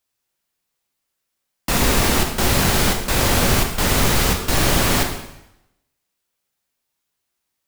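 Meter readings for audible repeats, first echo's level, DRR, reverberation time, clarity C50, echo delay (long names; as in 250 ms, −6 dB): no echo audible, no echo audible, 2.5 dB, 0.85 s, 6.5 dB, no echo audible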